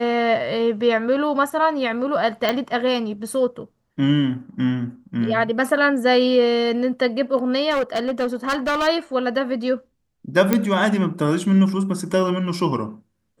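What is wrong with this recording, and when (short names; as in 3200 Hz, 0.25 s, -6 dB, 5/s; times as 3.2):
2.49 pop -7 dBFS
7.7–8.88 clipped -17.5 dBFS
10.53 pop -4 dBFS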